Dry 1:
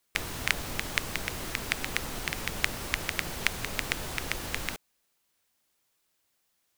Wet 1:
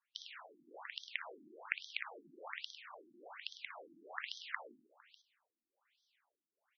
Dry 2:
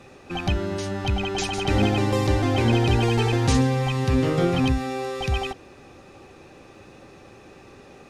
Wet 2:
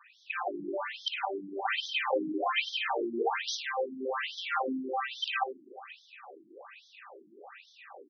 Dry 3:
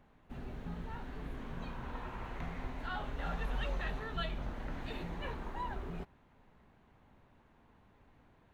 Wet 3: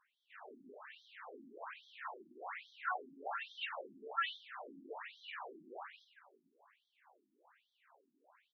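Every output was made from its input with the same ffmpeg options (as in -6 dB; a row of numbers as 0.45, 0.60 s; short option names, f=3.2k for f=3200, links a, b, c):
-filter_complex "[0:a]crystalizer=i=3:c=0,dynaudnorm=f=110:g=3:m=8dB,acrossover=split=440 2700:gain=0.1 1 0.158[a][b][c];[a][b][c]amix=inputs=3:normalize=0,aecho=1:1:58|103|456:0.376|0.282|0.126,afftfilt=real='re*between(b*sr/1024,240*pow(4500/240,0.5+0.5*sin(2*PI*1.2*pts/sr))/1.41,240*pow(4500/240,0.5+0.5*sin(2*PI*1.2*pts/sr))*1.41)':imag='im*between(b*sr/1024,240*pow(4500/240,0.5+0.5*sin(2*PI*1.2*pts/sr))/1.41,240*pow(4500/240,0.5+0.5*sin(2*PI*1.2*pts/sr))*1.41)':win_size=1024:overlap=0.75,volume=-2.5dB"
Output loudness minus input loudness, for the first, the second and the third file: -14.0, -9.5, -3.0 LU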